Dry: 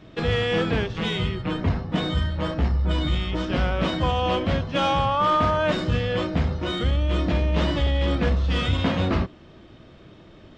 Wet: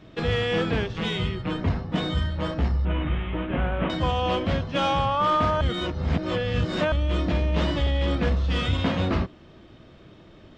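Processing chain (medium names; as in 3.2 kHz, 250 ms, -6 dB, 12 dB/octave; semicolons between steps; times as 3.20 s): 2.85–3.90 s: CVSD coder 16 kbps; 5.61–6.92 s: reverse; trim -1.5 dB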